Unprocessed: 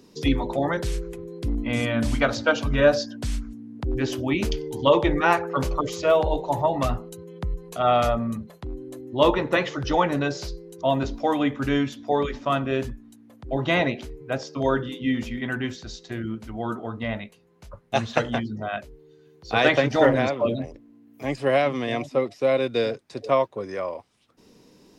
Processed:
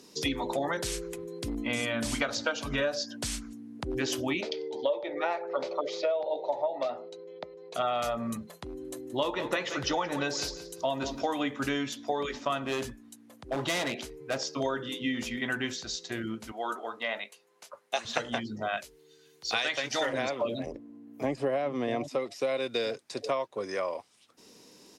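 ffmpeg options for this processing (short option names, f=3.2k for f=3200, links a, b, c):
-filter_complex "[0:a]asplit=3[a][b][c];[a]afade=t=out:st=4.4:d=0.02[d];[b]highpass=390,equalizer=f=590:t=q:w=4:g=9,equalizer=f=1.1k:t=q:w=4:g=-9,equalizer=f=1.6k:t=q:w=4:g=-8,equalizer=f=2.9k:t=q:w=4:g=-9,lowpass=f=4.1k:w=0.5412,lowpass=f=4.1k:w=1.3066,afade=t=in:st=4.4:d=0.02,afade=t=out:st=7.74:d=0.02[e];[c]afade=t=in:st=7.74:d=0.02[f];[d][e][f]amix=inputs=3:normalize=0,asplit=3[g][h][i];[g]afade=t=out:st=8.81:d=0.02[j];[h]aecho=1:1:174|348|522:0.178|0.0462|0.012,afade=t=in:st=8.81:d=0.02,afade=t=out:st=11.34:d=0.02[k];[i]afade=t=in:st=11.34:d=0.02[l];[j][k][l]amix=inputs=3:normalize=0,asettb=1/sr,asplit=3[m][n][o];[m]atrim=end=12.664[p];[n]atrim=start=12.66:end=14.39,asetpts=PTS-STARTPTS,afade=t=in:d=0.004:c=qsin,afade=t=out:st=1.726:d=0.004:c=qsin,volume=23dB,asoftclip=hard,volume=-23dB[q];[o]atrim=start=14.386[r];[p][q]acrossfade=d=0.004:c1=hsin:c2=qsin[s];[s][r]acrossfade=d=0.004:c1=qsin:c2=hsin,asettb=1/sr,asplit=3[t][u][v];[t]atrim=end=16.524[w];[u]atrim=start=16.52:end=18.05,asetpts=PTS-STARTPTS,afade=t=in:d=0.004:c=qsin,afade=t=out:st=1.526:d=0.004:c=qsin,highpass=460[x];[v]atrim=start=18.046[y];[w][x]acrossfade=d=0.004:c1=hsin:c2=qsin[z];[z][y]acrossfade=d=0.004:c1=qsin:c2=hsin,asettb=1/sr,asplit=3[aa][ab][ac];[aa]atrim=end=18.774[ad];[ab]atrim=start=18.77:end=20.13,asetpts=PTS-STARTPTS,afade=t=in:d=0.004:c=qsin,afade=t=out:st=1.356:d=0.004:c=qsin,tiltshelf=f=1.5k:g=-6[ae];[ac]atrim=start=20.126[af];[ad][ae]acrossfade=d=0.004:c1=hsin:c2=qsin[ag];[ag][af]acrossfade=d=0.004:c1=qsin:c2=hsin,asettb=1/sr,asplit=3[ah][ai][aj];[ah]atrim=end=20.664[ak];[ai]atrim=start=20.66:end=22.08,asetpts=PTS-STARTPTS,afade=t=in:d=0.004:c=qsin,afade=t=out:st=1.416:d=0.004:c=qsin,tiltshelf=f=1.4k:g=8.5[al];[aj]atrim=start=22.076[am];[ak][al]acrossfade=d=0.004:c1=hsin:c2=qsin[an];[an][am]acrossfade=d=0.004:c1=qsin:c2=hsin,lowpass=8.8k,aemphasis=mode=production:type=bsi,acompressor=threshold=-26dB:ratio=10"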